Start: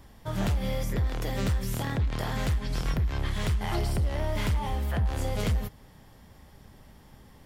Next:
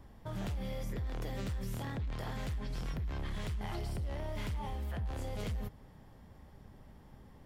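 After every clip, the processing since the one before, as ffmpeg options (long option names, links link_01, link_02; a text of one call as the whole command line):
ffmpeg -i in.wav -filter_complex "[0:a]highshelf=frequency=2000:gain=-10,acrossover=split=2200[link_01][link_02];[link_01]alimiter=level_in=6dB:limit=-24dB:level=0:latency=1:release=15,volume=-6dB[link_03];[link_03][link_02]amix=inputs=2:normalize=0,volume=-2.5dB" out.wav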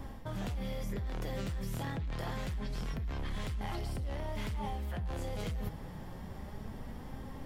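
ffmpeg -i in.wav -af "areverse,acompressor=threshold=-45dB:ratio=10,areverse,flanger=delay=3.7:depth=2.4:regen=69:speed=0.27:shape=sinusoidal,volume=16dB" out.wav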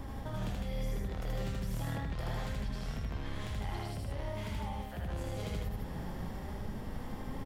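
ffmpeg -i in.wav -af "acompressor=threshold=-40dB:ratio=6,aecho=1:1:78.72|154.5:0.891|0.708,volume=2dB" out.wav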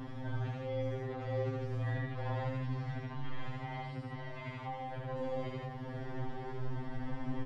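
ffmpeg -i in.wav -filter_complex "[0:a]acrossover=split=2600[link_01][link_02];[link_02]acompressor=threshold=-58dB:ratio=4:attack=1:release=60[link_03];[link_01][link_03]amix=inputs=2:normalize=0,lowpass=3700,afftfilt=real='re*2.45*eq(mod(b,6),0)':imag='im*2.45*eq(mod(b,6),0)':win_size=2048:overlap=0.75,volume=3.5dB" out.wav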